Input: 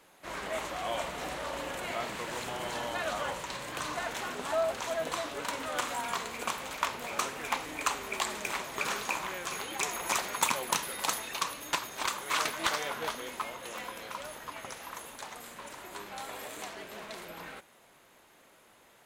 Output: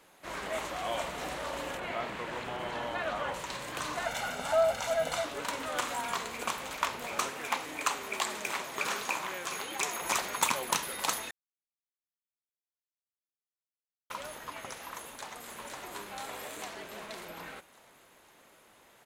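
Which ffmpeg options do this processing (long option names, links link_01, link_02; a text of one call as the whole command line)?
ffmpeg -i in.wav -filter_complex "[0:a]asettb=1/sr,asplit=3[link_01][link_02][link_03];[link_01]atrim=end=1.774[link_04];[link_02]atrim=start=1.77:end=3.34,asetpts=PTS-STARTPTS,afade=type=in:duration=0.004:curve=qsin,afade=type=out:start_time=1.566:duration=0.004:curve=qsin,acrossover=split=3600[link_05][link_06];[link_06]acompressor=threshold=-58dB:ratio=4:attack=1:release=60[link_07];[link_05][link_07]amix=inputs=2:normalize=0[link_08];[link_03]atrim=start=3.336[link_09];[link_04][link_08]acrossfade=duration=0.004:curve1=hsin:curve2=qsin[link_10];[link_10][link_09]acrossfade=duration=0.004:curve1=qsin:curve2=hsin,asettb=1/sr,asplit=3[link_11][link_12][link_13];[link_11]atrim=end=4.054[link_14];[link_12]atrim=start=4.05:end=5.25,asetpts=PTS-STARTPTS,afade=type=in:duration=0.004:curve=qsin,afade=type=out:start_time=1.196:duration=0.004:curve=qsin,aecho=1:1:1.4:0.67,atrim=end_sample=52920[link_15];[link_13]atrim=start=5.246[link_16];[link_14][link_15]acrossfade=duration=0.004:curve1=hsin:curve2=qsin[link_17];[link_17][link_16]acrossfade=duration=0.004:curve1=qsin:curve2=hsin,asettb=1/sr,asplit=3[link_18][link_19][link_20];[link_18]atrim=end=7.304[link_21];[link_19]atrim=start=7.3:end=10.02,asetpts=PTS-STARTPTS,afade=type=in:duration=0.004:curve=qsin,afade=type=out:start_time=2.716:duration=0.004:curve=qsin,highpass=frequency=160:poles=1[link_22];[link_20]atrim=start=10.016[link_23];[link_21][link_22]acrossfade=duration=0.004:curve1=hsin:curve2=qsin[link_24];[link_24][link_23]acrossfade=duration=0.004:curve1=qsin:curve2=hsin,asplit=2[link_25][link_26];[link_26]afade=type=in:start_time=14.97:duration=0.01,afade=type=out:start_time=15.49:duration=0.01,aecho=0:1:510|1020|1530|2040|2550|3060|3570|4080|4590:0.668344|0.401006|0.240604|0.144362|0.0866174|0.0519704|0.0311823|0.0187094|0.0112256[link_27];[link_25][link_27]amix=inputs=2:normalize=0,asplit=3[link_28][link_29][link_30];[link_28]atrim=end=11.31,asetpts=PTS-STARTPTS,afade=type=out:start_time=11.306:duration=0.004:curve=hsin[link_31];[link_29]atrim=start=11.31:end=14.1,asetpts=PTS-STARTPTS,volume=0[link_32];[link_30]atrim=start=14.1,asetpts=PTS-STARTPTS,afade=type=in:duration=0.004:curve=hsin[link_33];[link_31][link_32][link_33]concat=n=3:v=0:a=1" out.wav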